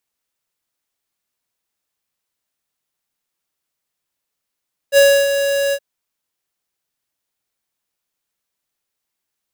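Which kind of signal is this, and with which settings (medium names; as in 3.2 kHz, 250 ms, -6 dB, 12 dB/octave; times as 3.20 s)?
ADSR square 559 Hz, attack 54 ms, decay 297 ms, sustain -9 dB, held 0.81 s, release 59 ms -8.5 dBFS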